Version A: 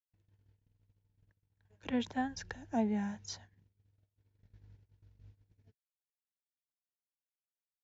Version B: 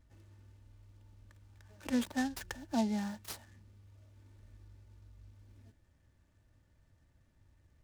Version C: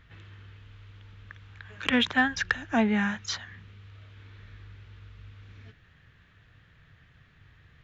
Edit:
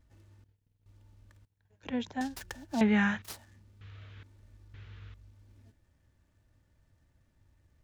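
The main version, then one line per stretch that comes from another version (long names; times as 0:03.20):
B
0:00.44–0:00.86: punch in from A
0:01.45–0:02.21: punch in from A
0:02.81–0:03.22: punch in from C
0:03.81–0:04.23: punch in from C
0:04.74–0:05.14: punch in from C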